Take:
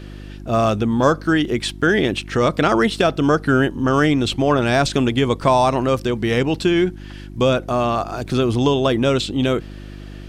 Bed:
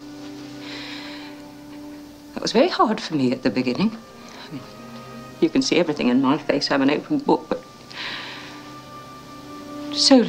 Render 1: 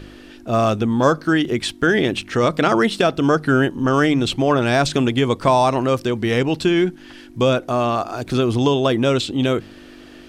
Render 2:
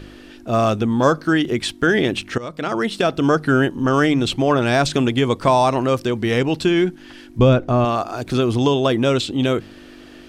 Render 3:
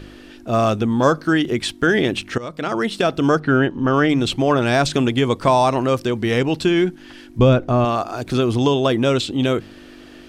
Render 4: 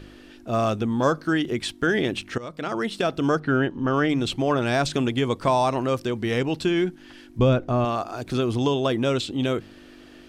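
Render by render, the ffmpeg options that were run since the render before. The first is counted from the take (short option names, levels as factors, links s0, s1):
-af "bandreject=f=50:t=h:w=4,bandreject=f=100:t=h:w=4,bandreject=f=150:t=h:w=4,bandreject=f=200:t=h:w=4"
-filter_complex "[0:a]asettb=1/sr,asplit=3[s0][s1][s2];[s0]atrim=end=7.394[s3];[s1]atrim=start=7.39:end=7.85,asetpts=PTS-STARTPTS,afade=t=in:d=0.004:c=qsin,afade=t=out:st=0.456:d=0.004:c=qsin,aemphasis=mode=reproduction:type=bsi[s4];[s2]atrim=start=7.846[s5];[s3][s4]acrossfade=d=0.004:c1=hsin:c2=qsin[s6];[s6][s5]acrossfade=d=0.004:c1=qsin:c2=hsin,asplit=2[s7][s8];[s7]atrim=end=2.38,asetpts=PTS-STARTPTS,afade=t=out:st=2.376:d=0.004:c=hsin:silence=0.133352[s9];[s8]atrim=start=2.38,asetpts=PTS-STARTPTS,afade=t=in:d=0.82:silence=0.133352[s10];[s9][s10]concat=n=2:v=0:a=1"
-filter_complex "[0:a]asplit=3[s0][s1][s2];[s0]afade=t=out:st=3.39:d=0.02[s3];[s1]lowpass=3800,afade=t=in:st=3.39:d=0.02,afade=t=out:st=4.08:d=0.02[s4];[s2]afade=t=in:st=4.08:d=0.02[s5];[s3][s4][s5]amix=inputs=3:normalize=0"
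-af "volume=0.531"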